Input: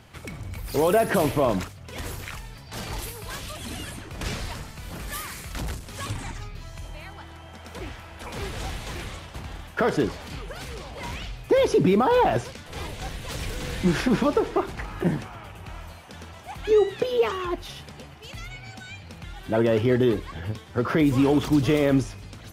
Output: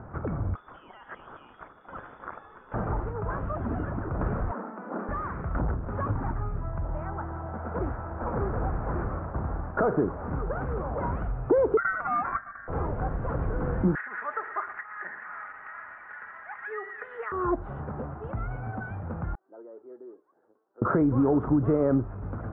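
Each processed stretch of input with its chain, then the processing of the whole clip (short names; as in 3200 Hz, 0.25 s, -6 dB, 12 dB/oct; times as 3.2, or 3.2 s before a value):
0.55–2.74 compressor 2:1, threshold -36 dBFS + air absorption 160 m + inverted band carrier 3500 Hz
4.51–5.09 steep high-pass 190 Hz 96 dB/oct + air absorption 230 m
7.96–10.53 CVSD 16 kbps + mismatched tape noise reduction decoder only
11.77–12.68 median filter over 41 samples + ripple EQ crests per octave 1.2, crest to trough 15 dB + ring modulator 1700 Hz
13.95–17.32 resonant high-pass 1900 Hz, resonance Q 8.4 + comb 4.8 ms, depth 40% + lo-fi delay 0.113 s, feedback 55%, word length 7-bit, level -14 dB
19.35–20.82 ladder band-pass 420 Hz, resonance 40% + differentiator
whole clip: compressor 2.5:1, threshold -34 dBFS; elliptic low-pass 1400 Hz, stop band 80 dB; gain +9 dB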